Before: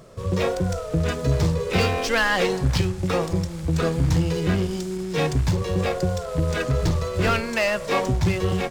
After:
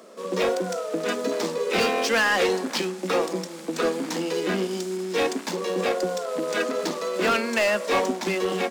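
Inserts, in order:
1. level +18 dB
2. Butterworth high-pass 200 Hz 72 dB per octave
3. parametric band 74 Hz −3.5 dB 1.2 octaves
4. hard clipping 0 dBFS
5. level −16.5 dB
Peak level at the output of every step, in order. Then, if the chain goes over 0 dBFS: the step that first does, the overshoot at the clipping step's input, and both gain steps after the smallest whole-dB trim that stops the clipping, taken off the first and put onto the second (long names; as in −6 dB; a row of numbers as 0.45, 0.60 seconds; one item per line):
+9.0, +9.5, +9.5, 0.0, −16.5 dBFS
step 1, 9.5 dB
step 1 +8 dB, step 5 −6.5 dB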